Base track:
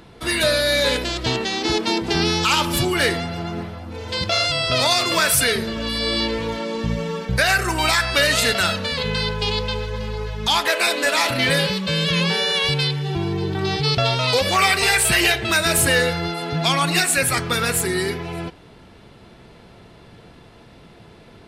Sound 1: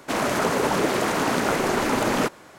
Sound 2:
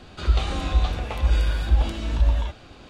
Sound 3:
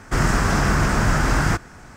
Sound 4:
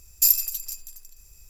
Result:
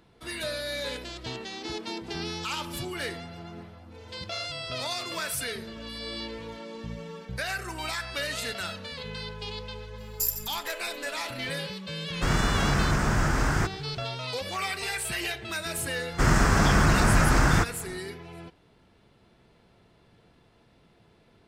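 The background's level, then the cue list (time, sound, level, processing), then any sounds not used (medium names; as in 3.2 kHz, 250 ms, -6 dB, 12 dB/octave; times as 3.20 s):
base track -14.5 dB
9.98 s: add 4 -10 dB
12.10 s: add 3 -6 dB
16.07 s: add 3 -2 dB, fades 0.10 s
not used: 1, 2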